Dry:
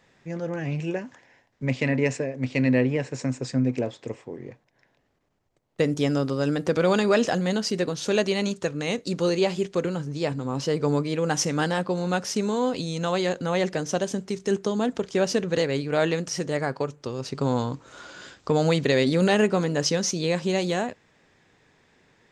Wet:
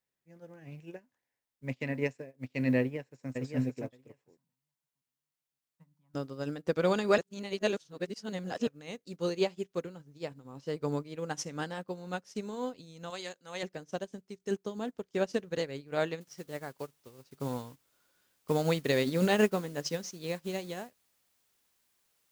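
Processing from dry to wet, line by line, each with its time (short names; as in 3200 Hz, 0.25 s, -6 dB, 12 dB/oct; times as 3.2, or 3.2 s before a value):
2.78–3.3 echo throw 0.57 s, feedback 35%, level -3 dB
4.37–6.15 double band-pass 410 Hz, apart 2.5 oct
7.18–8.67 reverse
13.1–13.63 tilt +3 dB/oct
16.21 noise floor step -60 dB -42 dB
whole clip: upward expander 2.5:1, over -37 dBFS; gain -3 dB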